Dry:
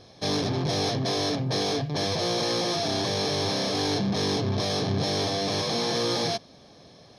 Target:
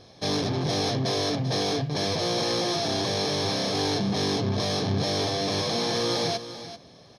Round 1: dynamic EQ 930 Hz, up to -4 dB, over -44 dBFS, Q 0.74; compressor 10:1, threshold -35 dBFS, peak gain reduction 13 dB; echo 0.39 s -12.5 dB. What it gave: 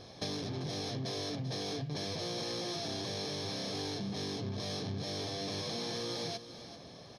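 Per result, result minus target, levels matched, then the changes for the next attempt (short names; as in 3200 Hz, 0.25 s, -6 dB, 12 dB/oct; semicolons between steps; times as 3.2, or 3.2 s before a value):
compressor: peak gain reduction +13 dB; 1000 Hz band -2.5 dB
remove: compressor 10:1, threshold -35 dBFS, peak gain reduction 13 dB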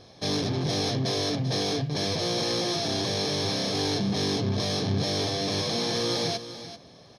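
1000 Hz band -2.5 dB
remove: dynamic EQ 930 Hz, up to -4 dB, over -44 dBFS, Q 0.74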